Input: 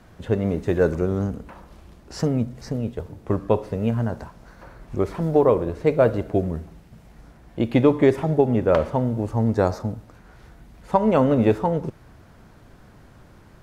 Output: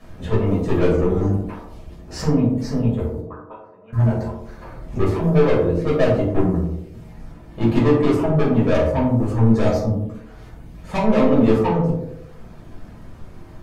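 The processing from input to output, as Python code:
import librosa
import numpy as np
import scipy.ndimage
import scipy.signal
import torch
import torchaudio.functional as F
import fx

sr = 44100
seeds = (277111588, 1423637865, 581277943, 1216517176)

p1 = fx.dereverb_blind(x, sr, rt60_s=0.81)
p2 = fx.auto_wah(p1, sr, base_hz=650.0, top_hz=1500.0, q=11.0, full_db=-17.5, direction='up', at=(3.2, 3.93))
p3 = 10.0 ** (-21.5 / 20.0) * np.tanh(p2 / 10.0 ** (-21.5 / 20.0))
p4 = p3 + fx.echo_banded(p3, sr, ms=90, feedback_pct=58, hz=410.0, wet_db=-4.5, dry=0)
p5 = fx.room_shoebox(p4, sr, seeds[0], volume_m3=350.0, walls='furnished', distance_m=6.0)
y = F.gain(torch.from_numpy(p5), -3.0).numpy()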